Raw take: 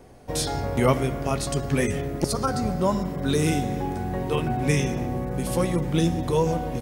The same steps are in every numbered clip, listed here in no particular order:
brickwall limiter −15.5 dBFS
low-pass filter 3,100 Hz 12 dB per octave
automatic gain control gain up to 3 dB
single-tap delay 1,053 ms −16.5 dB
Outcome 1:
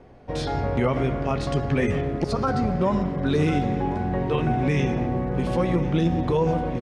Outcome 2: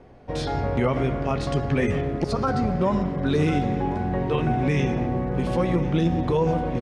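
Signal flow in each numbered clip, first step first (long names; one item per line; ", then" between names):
low-pass filter, then brickwall limiter, then automatic gain control, then single-tap delay
low-pass filter, then brickwall limiter, then single-tap delay, then automatic gain control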